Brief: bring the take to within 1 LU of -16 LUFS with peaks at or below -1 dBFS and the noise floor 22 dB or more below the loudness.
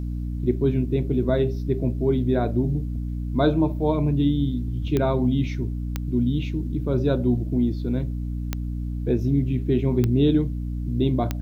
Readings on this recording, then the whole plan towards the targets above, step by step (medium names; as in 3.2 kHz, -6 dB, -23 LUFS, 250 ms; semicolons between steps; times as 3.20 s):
clicks found 5; hum 60 Hz; highest harmonic 300 Hz; hum level -26 dBFS; loudness -24.0 LUFS; peak level -6.0 dBFS; loudness target -16.0 LUFS
-> de-click; de-hum 60 Hz, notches 5; trim +8 dB; peak limiter -1 dBFS